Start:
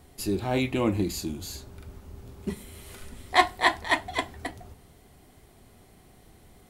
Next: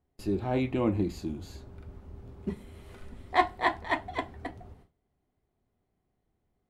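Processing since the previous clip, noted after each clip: LPF 1300 Hz 6 dB/oct; gate with hold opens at -42 dBFS; gain -1.5 dB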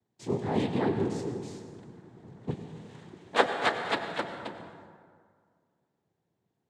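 noise vocoder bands 6; reverb RT60 2.0 s, pre-delay 82 ms, DRR 7 dB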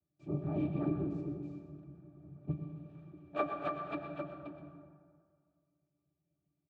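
octave resonator D, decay 0.11 s; echo 0.124 s -12.5 dB; gain +3 dB

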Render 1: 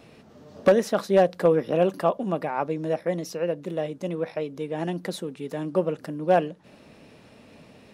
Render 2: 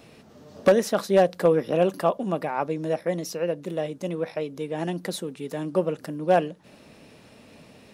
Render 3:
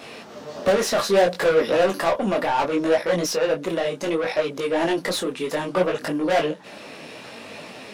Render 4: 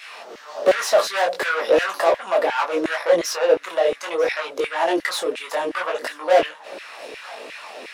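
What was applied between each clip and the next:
high shelf 4800 Hz +6 dB
overdrive pedal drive 26 dB, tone 4400 Hz, clips at -8.5 dBFS; detuned doubles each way 23 cents
thinning echo 0.944 s, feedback 50%, high-pass 880 Hz, level -19 dB; LFO high-pass saw down 2.8 Hz 340–2100 Hz

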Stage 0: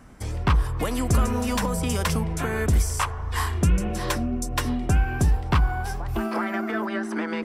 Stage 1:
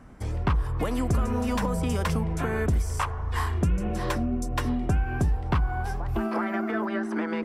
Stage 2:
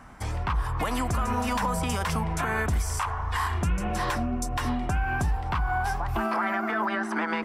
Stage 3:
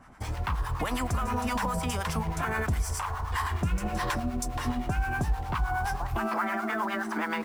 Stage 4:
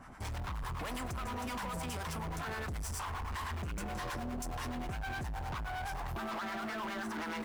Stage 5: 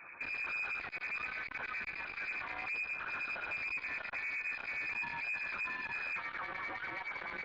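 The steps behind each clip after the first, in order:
high shelf 2700 Hz -9 dB; compressor 3:1, threshold -21 dBFS, peak gain reduction 5 dB
resonant low shelf 630 Hz -7.5 dB, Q 1.5; limiter -24.5 dBFS, peak gain reduction 11 dB; gain +6.5 dB
in parallel at -10 dB: bit-crush 6-bit; on the sum: harmonic tremolo 9.6 Hz, depth 70%, crossover 760 Hz; gain -1.5 dB
limiter -27.5 dBFS, peak gain reduction 10.5 dB; hard clip -37.5 dBFS, distortion -9 dB; gain +1 dB
inverted band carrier 2500 Hz; core saturation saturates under 960 Hz

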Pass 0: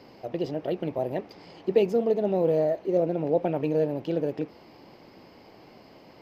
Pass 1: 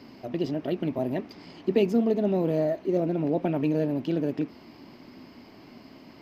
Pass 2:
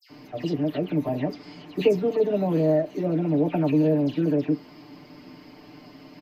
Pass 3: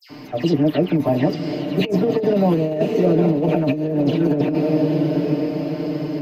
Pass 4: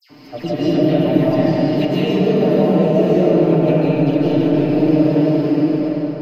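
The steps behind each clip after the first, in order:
thirty-one-band EQ 250 Hz +9 dB, 500 Hz -10 dB, 800 Hz -6 dB; gain +2 dB
comb 6.7 ms, depth 88%; dispersion lows, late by 0.1 s, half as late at 2400 Hz
diffused feedback echo 0.921 s, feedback 51%, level -7 dB; negative-ratio compressor -23 dBFS, ratio -0.5; gain +7 dB
ending faded out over 0.79 s; reverb RT60 3.3 s, pre-delay 0.11 s, DRR -8.5 dB; gain -5.5 dB

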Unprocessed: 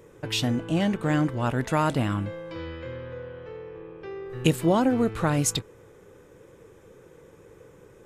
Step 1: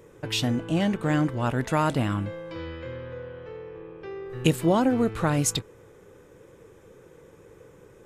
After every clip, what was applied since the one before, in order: nothing audible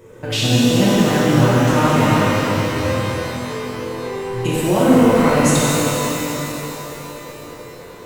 limiter -17 dBFS, peak gain reduction 10 dB; companded quantiser 8-bit; shimmer reverb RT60 3.9 s, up +12 st, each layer -8 dB, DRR -8.5 dB; gain +3 dB

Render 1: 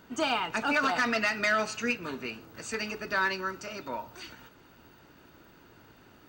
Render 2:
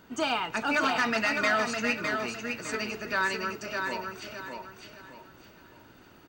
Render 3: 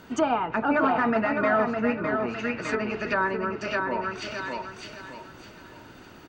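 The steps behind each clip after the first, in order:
feedback echo 0.608 s, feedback 33%, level -5 dB
treble ducked by the level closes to 1100 Hz, closed at -27.5 dBFS; gain +7 dB

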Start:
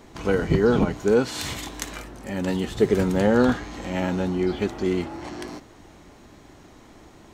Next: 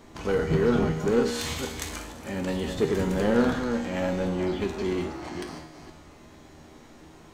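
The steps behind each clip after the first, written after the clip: reverse delay 0.236 s, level -8 dB; in parallel at -7.5 dB: wavefolder -21 dBFS; on the sum: resonator 79 Hz, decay 0.92 s, harmonics all, mix 80%; gain +5.5 dB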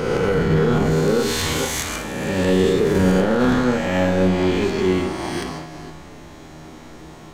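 spectral swells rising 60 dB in 1.91 s; limiter -16.5 dBFS, peak gain reduction 7.5 dB; on a send at -5.5 dB: reverb, pre-delay 32 ms; on the sum: gain +5.5 dB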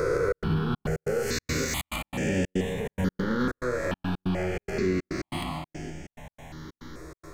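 compressor 3:1, threshold -22 dBFS, peak gain reduction 7.5 dB; step gate "xxx.xxx.x." 141 bpm -60 dB; step phaser 2.3 Hz 810–4000 Hz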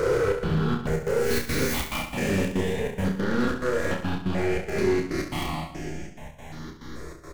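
tracing distortion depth 0.22 ms; overloaded stage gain 22.5 dB; on a send: reverse bouncing-ball echo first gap 30 ms, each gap 1.25×, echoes 5; on the sum: gain +1.5 dB

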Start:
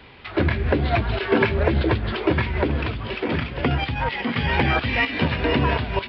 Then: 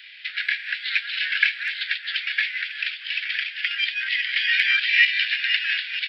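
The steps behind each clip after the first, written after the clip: steep high-pass 1600 Hz 72 dB/oct; bell 4100 Hz +3 dB 1.5 oct; gain +5 dB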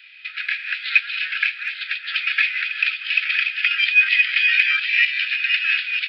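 AGC; small resonant body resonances 1300/2500 Hz, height 14 dB, ringing for 30 ms; gain -6 dB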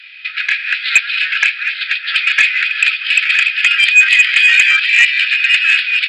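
sine folder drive 6 dB, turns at -1 dBFS; gain -1 dB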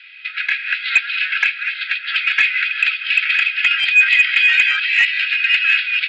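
Gaussian blur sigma 1.7 samples; notch comb 600 Hz; gain -1 dB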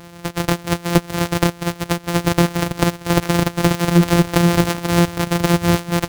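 sample sorter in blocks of 256 samples; reverb removal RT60 0.74 s; core saturation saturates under 280 Hz; gain +2.5 dB

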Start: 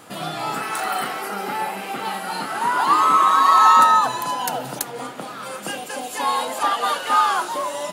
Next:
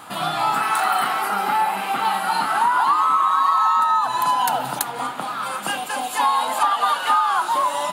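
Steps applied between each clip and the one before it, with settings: EQ curve 250 Hz 0 dB, 500 Hz -4 dB, 870 Hz +9 dB, 1300 Hz +8 dB, 1900 Hz +3 dB, 3900 Hz +5 dB, 5700 Hz -2 dB, 9000 Hz +3 dB; compressor 8:1, threshold -15 dBFS, peak gain reduction 14.5 dB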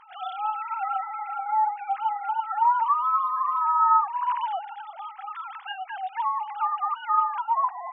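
sine-wave speech; dynamic EQ 1900 Hz, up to -4 dB, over -30 dBFS, Q 0.84; gain -4 dB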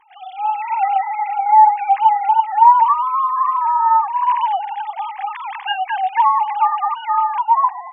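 AGC gain up to 15 dB; fixed phaser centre 900 Hz, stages 8; gain +1 dB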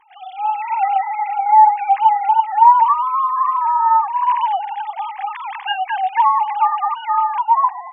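nothing audible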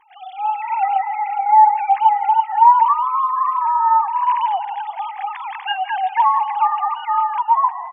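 feedback echo 0.164 s, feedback 48%, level -16 dB; gain -1 dB

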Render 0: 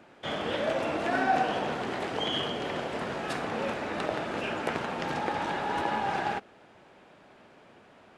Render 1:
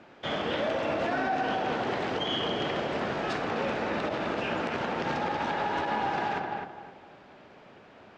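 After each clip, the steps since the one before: LPF 6400 Hz 24 dB/oct; darkening echo 0.257 s, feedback 32%, low-pass 2100 Hz, level -5.5 dB; limiter -22.5 dBFS, peak gain reduction 9 dB; gain +2 dB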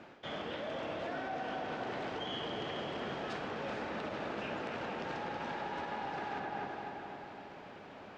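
reverse; compressor 6:1, threshold -38 dBFS, peak gain reduction 12.5 dB; reverse; diffused feedback echo 0.451 s, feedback 41%, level -6 dB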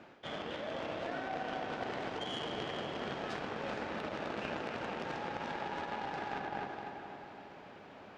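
added harmonics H 3 -13 dB, 5 -35 dB, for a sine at -27 dBFS; gain +5.5 dB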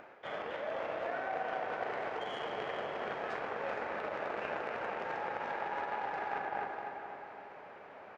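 band shelf 990 Hz +11 dB 2.9 oct; upward compressor, threshold -43 dBFS; doubler 40 ms -12 dB; gain -8.5 dB

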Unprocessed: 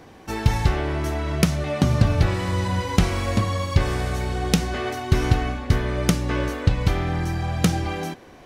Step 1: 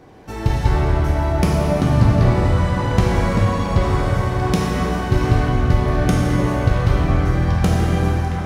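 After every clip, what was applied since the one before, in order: tilt shelf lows +3.5 dB, about 1300 Hz; delay with a stepping band-pass 0.742 s, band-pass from 970 Hz, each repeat 0.7 oct, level -4 dB; plate-style reverb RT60 3.8 s, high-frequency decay 0.6×, DRR -4.5 dB; gain -3.5 dB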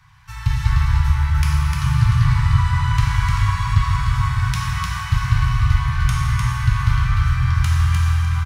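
Chebyshev band-stop 140–1000 Hz, order 4; on a send: echo 0.302 s -3.5 dB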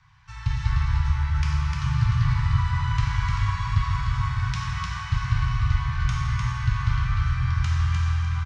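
LPF 6700 Hz 24 dB/oct; gain -6 dB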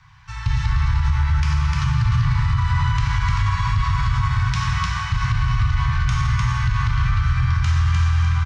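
limiter -18.5 dBFS, peak gain reduction 8.5 dB; gain +7.5 dB

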